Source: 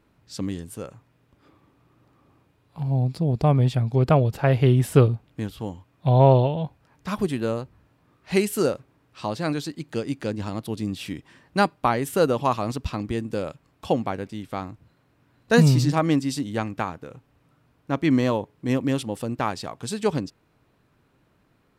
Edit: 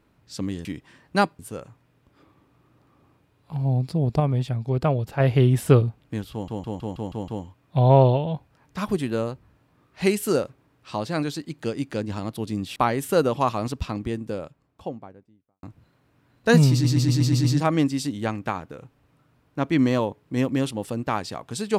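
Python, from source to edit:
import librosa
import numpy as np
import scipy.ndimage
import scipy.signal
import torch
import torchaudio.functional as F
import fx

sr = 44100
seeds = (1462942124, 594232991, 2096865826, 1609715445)

y = fx.studio_fade_out(x, sr, start_s=12.74, length_s=1.93)
y = fx.edit(y, sr, fx.clip_gain(start_s=3.46, length_s=1.0, db=-4.0),
    fx.stutter(start_s=5.58, slice_s=0.16, count=7),
    fx.move(start_s=11.06, length_s=0.74, to_s=0.65),
    fx.stutter(start_s=15.76, slice_s=0.12, count=7), tone=tone)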